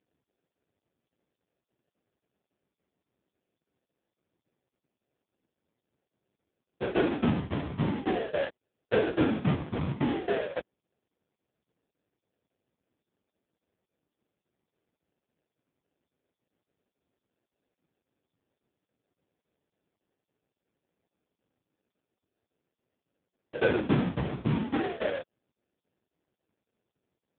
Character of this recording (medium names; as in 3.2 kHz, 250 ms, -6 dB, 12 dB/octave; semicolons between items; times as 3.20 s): tremolo saw down 3.6 Hz, depth 95%; aliases and images of a low sample rate 1.1 kHz, jitter 20%; AMR-NB